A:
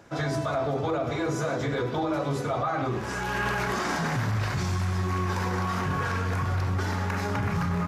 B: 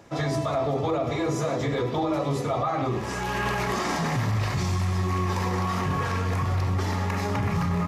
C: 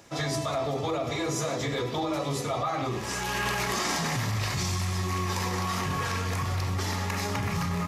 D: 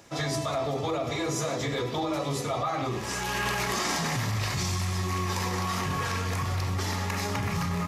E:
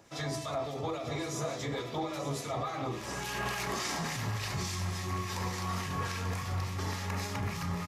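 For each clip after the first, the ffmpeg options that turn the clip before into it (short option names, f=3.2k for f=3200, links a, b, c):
-af "bandreject=f=1.5k:w=5.1,volume=2dB"
-af "highshelf=f=2.4k:g=11.5,volume=-4.5dB"
-af anull
-filter_complex "[0:a]acrossover=split=1600[a][b];[a]aeval=exprs='val(0)*(1-0.5/2+0.5/2*cos(2*PI*3.5*n/s))':c=same[c];[b]aeval=exprs='val(0)*(1-0.5/2-0.5/2*cos(2*PI*3.5*n/s))':c=same[d];[c][d]amix=inputs=2:normalize=0,asplit=2[e][f];[f]aecho=0:1:890:0.282[g];[e][g]amix=inputs=2:normalize=0,volume=-4dB"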